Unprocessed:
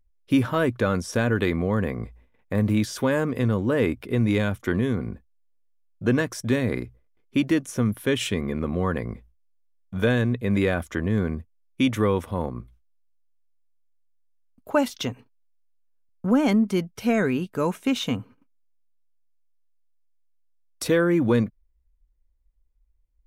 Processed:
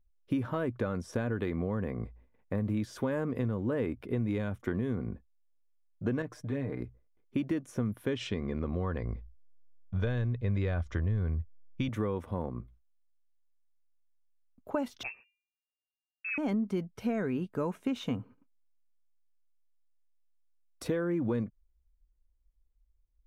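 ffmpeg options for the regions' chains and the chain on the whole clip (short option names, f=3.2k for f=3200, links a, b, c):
-filter_complex "[0:a]asettb=1/sr,asplit=3[a][b][c];[a]atrim=end=6.224[d];[b]atrim=start=6.22:end=6.8,asetpts=PTS-STARTPTS,afade=t=in:d=0.004:c=qsin,afade=t=out:st=0.576:d=0.004:c=qsin,highshelf=f=3.5k:g=-8,acompressor=threshold=-38dB:ratio=1.5:attack=3.2:release=140:knee=1:detection=peak,aecho=1:1:6.7:0.59,atrim=end_sample=25578[e];[c]atrim=start=6.796[f];[d][e]acrossfade=d=0.004:c1=hsin:c2=qsin[g];[g][f]acrossfade=d=0.004:c1=qsin:c2=hsin,asettb=1/sr,asplit=3[h][i][j];[h]atrim=end=8.144[k];[i]atrim=start=8.14:end=11.89,asetpts=PTS-STARTPTS,afade=t=in:d=0.004:c=qsin,afade=t=out:st=3.746:d=0.004:c=qsin,lowpass=f=5.2k:t=q:w=2,asubboost=boost=11:cutoff=84[l];[j]atrim=start=11.886[m];[k][l]acrossfade=d=0.004:c1=hsin:c2=qsin[n];[n][m]acrossfade=d=0.004:c1=qsin:c2=hsin,asettb=1/sr,asplit=3[o][p][q];[o]atrim=end=15.034[r];[p]atrim=start=15.03:end=16.38,asetpts=PTS-STARTPTS,afade=t=in:d=0.004:c=qsin,afade=t=out:st=1.346:d=0.004:c=qsin,agate=range=-27dB:threshold=-56dB:ratio=16:release=100:detection=peak,bandreject=f=397:t=h:w=4,bandreject=f=794:t=h:w=4,lowpass=f=2.4k:t=q:w=0.5098,lowpass=f=2.4k:t=q:w=0.6013,lowpass=f=2.4k:t=q:w=0.9,lowpass=f=2.4k:t=q:w=2.563,afreqshift=-2800[s];[q]atrim=start=16.376[t];[r][s]acrossfade=d=0.004:c1=hsin:c2=qsin[u];[u][t]acrossfade=d=0.004:c1=qsin:c2=hsin,acompressor=threshold=-23dB:ratio=6,highshelf=f=2.2k:g=-11.5,volume=-4dB"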